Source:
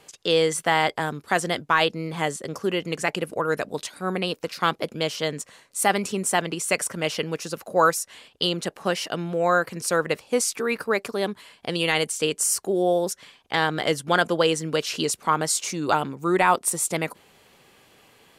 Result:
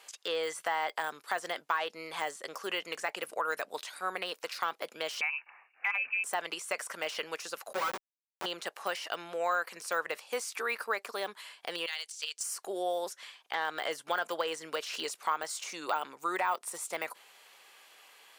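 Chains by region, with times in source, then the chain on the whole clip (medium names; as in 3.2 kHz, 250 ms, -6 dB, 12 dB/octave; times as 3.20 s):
5.21–6.24 s: distance through air 400 m + frequency inversion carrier 2.8 kHz
7.73–8.46 s: level-controlled noise filter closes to 900 Hz, open at -13.5 dBFS + Schmitt trigger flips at -24.5 dBFS + comb 5.3 ms, depth 84%
11.86–12.44 s: band-pass filter 4.9 kHz, Q 1.7 + transient shaper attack +11 dB, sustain +1 dB
whole clip: de-esser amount 90%; high-pass 840 Hz 12 dB/octave; compression 2:1, threshold -30 dBFS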